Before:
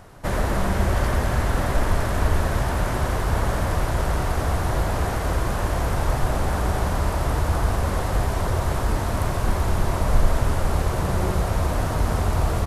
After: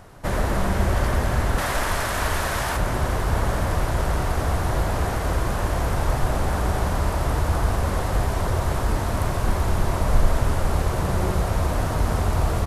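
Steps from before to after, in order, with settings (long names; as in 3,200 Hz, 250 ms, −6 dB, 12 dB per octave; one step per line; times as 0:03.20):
0:01.58–0:02.77: tilt shelving filter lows −6.5 dB, about 650 Hz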